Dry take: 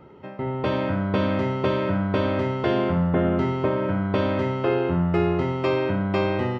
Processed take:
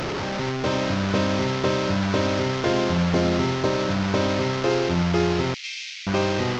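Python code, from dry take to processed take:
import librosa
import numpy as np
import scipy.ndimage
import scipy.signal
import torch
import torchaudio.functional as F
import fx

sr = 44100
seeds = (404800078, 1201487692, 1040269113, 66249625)

y = fx.delta_mod(x, sr, bps=32000, step_db=-21.5)
y = fx.ellip_highpass(y, sr, hz=2200.0, order=4, stop_db=70, at=(5.54, 6.07))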